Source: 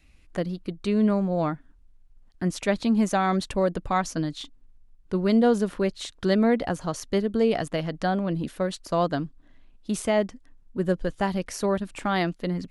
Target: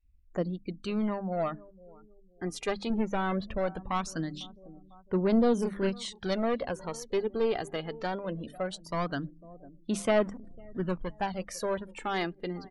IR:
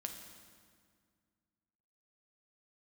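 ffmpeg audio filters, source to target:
-filter_complex "[0:a]asettb=1/sr,asplit=3[s0][s1][s2];[s0]atrim=end=10.164[s3];[s1]atrim=start=10.16:end=11.03,asetpts=PTS-STARTPTS,afade=t=in:d=0.004:c=qsin,afade=t=out:st=0.866:d=0.004:c=qsin,aeval=exprs='val(0)+0.5*0.0126*sgn(val(0))':c=same[s4];[s2]atrim=start=11.026[s5];[s3][s4]acrossfade=d=0.004:c1=hsin:c2=qsin[s6];[s6][s5]acrossfade=d=0.004:c1=qsin:c2=hsin,lowshelf=f=160:g=-6.5,bandreject=f=50:t=h:w=6,bandreject=f=100:t=h:w=6,bandreject=f=150:t=h:w=6,bandreject=f=200:t=h:w=6,bandreject=f=250:t=h:w=6,bandreject=f=300:t=h:w=6,aeval=exprs='clip(val(0),-1,0.0708)':c=same,asettb=1/sr,asplit=3[s7][s8][s9];[s7]atrim=end=2.904[s10];[s8]atrim=start=2.9:end=3.58,asetpts=PTS-STARTPTS,afade=t=in:d=0.004:c=qsin,afade=t=out:st=0.676:d=0.004:c=qsin,bass=f=250:g=6,treble=f=4000:g=-14[s11];[s9]atrim=start=3.576[s12];[s10][s11]acrossfade=d=0.004:c1=hsin:c2=qsin[s13];[s13][s12]acrossfade=d=0.004:c1=qsin:c2=hsin,asplit=3[s14][s15][s16];[s14]afade=t=out:st=5.57:d=0.02[s17];[s15]asplit=2[s18][s19];[s19]adelay=31,volume=0.794[s20];[s18][s20]amix=inputs=2:normalize=0,afade=t=in:st=5.57:d=0.02,afade=t=out:st=6.25:d=0.02[s21];[s16]afade=t=in:st=6.25:d=0.02[s22];[s17][s21][s22]amix=inputs=3:normalize=0,asplit=2[s23][s24];[s24]adelay=500,lowpass=f=2800:p=1,volume=0.0891,asplit=2[s25][s26];[s26]adelay=500,lowpass=f=2800:p=1,volume=0.44,asplit=2[s27][s28];[s28]adelay=500,lowpass=f=2800:p=1,volume=0.44[s29];[s23][s25][s27][s29]amix=inputs=4:normalize=0,aphaser=in_gain=1:out_gain=1:delay=2.5:decay=0.46:speed=0.2:type=sinusoidal,afftdn=nr=31:nf=-46,volume=0.562"

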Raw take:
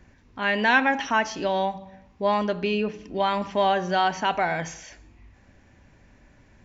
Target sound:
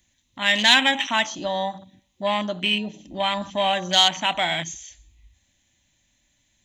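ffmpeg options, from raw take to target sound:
-af "afwtdn=0.0224,superequalizer=7b=0.282:12b=0.501:14b=0.316:16b=1.41,aexciter=amount=7.3:drive=8.7:freq=2300,volume=0.891"

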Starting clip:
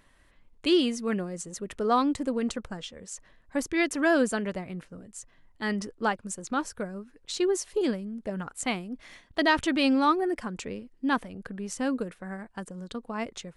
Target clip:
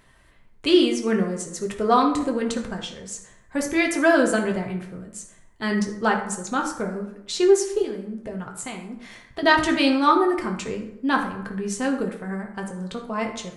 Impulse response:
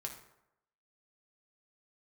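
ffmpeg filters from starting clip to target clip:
-filter_complex "[0:a]asettb=1/sr,asplit=3[s0][s1][s2];[s0]atrim=end=7.824[s3];[s1]atrim=start=7.82:end=9.43,asetpts=PTS-STARTPTS,afade=t=in:d=0.004:c=qsin,afade=t=out:st=1.606:d=0.004:c=qsin,acompressor=threshold=0.0158:ratio=6[s4];[s2]atrim=start=9.426[s5];[s3][s4]acrossfade=d=0.004:c1=hsin:c2=qsin[s6];[s6][s5]acrossfade=d=0.004:c1=qsin:c2=hsin[s7];[1:a]atrim=start_sample=2205[s8];[s7][s8]afir=irnorm=-1:irlink=0,volume=2.51"

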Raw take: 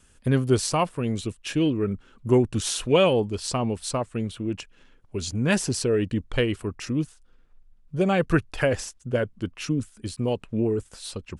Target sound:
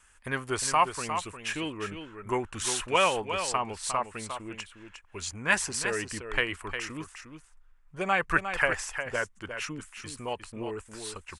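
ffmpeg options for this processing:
-af "equalizer=f=125:t=o:w=1:g=-11,equalizer=f=250:t=o:w=1:g=-8,equalizer=f=500:t=o:w=1:g=-5,equalizer=f=1000:t=o:w=1:g=9,equalizer=f=2000:t=o:w=1:g=9,equalizer=f=4000:t=o:w=1:g=-3,equalizer=f=8000:t=o:w=1:g=5,aecho=1:1:356:0.376,volume=0.562"

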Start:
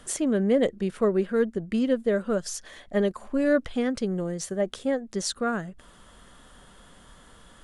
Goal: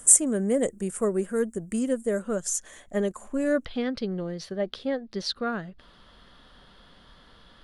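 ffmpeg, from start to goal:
-af "asetnsamples=n=441:p=0,asendcmd='2.19 highshelf g 6.5;3.65 highshelf g -9.5',highshelf=f=5800:t=q:w=3:g=13.5,volume=0.75"

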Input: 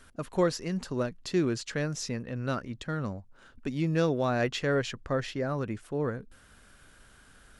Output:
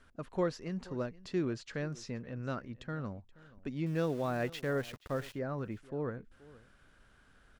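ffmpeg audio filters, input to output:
-filter_complex "[0:a]aemphasis=mode=reproduction:type=50fm,asettb=1/sr,asplit=3[s0][s1][s2];[s0]atrim=end=3.864[s3];[s1]atrim=start=3.86:end=5.34,asetpts=PTS-STARTPTS,afade=t=in:d=0.004:c=qsin,afade=t=out:st=1.476:d=0.004:c=qsin,aeval=exprs='val(0)*gte(abs(val(0)),0.01)':c=same[s4];[s2]atrim=start=5.336[s5];[s3][s4]acrossfade=d=0.004:c1=hsin:c2=qsin[s6];[s6][s5]acrossfade=d=0.004:c1=qsin:c2=hsin,aecho=1:1:477:0.0944,volume=0.473"

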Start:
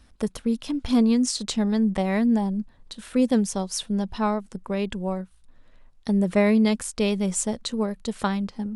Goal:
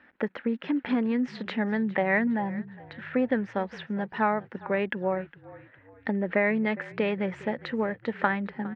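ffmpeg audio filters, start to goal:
-filter_complex "[0:a]asettb=1/sr,asplit=3[s0][s1][s2];[s0]atrim=end=2.274[s3];[s1]atrim=start=2.27:end=4.18,asetpts=PTS-STARTPTS,afade=t=in:d=0.004:c=qsin,afade=t=out:st=1.906:d=0.004:c=qsin,aeval=exprs='if(lt(val(0),0),0.708*val(0),val(0))':c=same[s4];[s2]atrim=start=4.176[s5];[s3][s4]acrossfade=d=0.004:c1=hsin:c2=qsin[s6];[s6][s5]acrossfade=d=0.004:c1=qsin:c2=hsin,acompressor=threshold=0.0794:ratio=5,highpass=390,equalizer=f=430:t=q:w=4:g=-5,equalizer=f=680:t=q:w=4:g=-6,equalizer=f=1100:t=q:w=4:g=-8,equalizer=f=1800:t=q:w=4:g=7,lowpass=f=2200:w=0.5412,lowpass=f=2200:w=1.3066,asplit=4[s7][s8][s9][s10];[s8]adelay=409,afreqshift=-41,volume=0.106[s11];[s9]adelay=818,afreqshift=-82,volume=0.0479[s12];[s10]adelay=1227,afreqshift=-123,volume=0.0214[s13];[s7][s11][s12][s13]amix=inputs=4:normalize=0,volume=2.51"

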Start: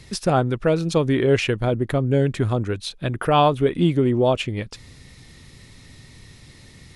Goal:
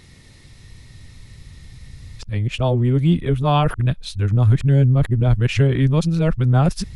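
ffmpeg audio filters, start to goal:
-af "areverse,asubboost=boost=7:cutoff=140,volume=0.841"

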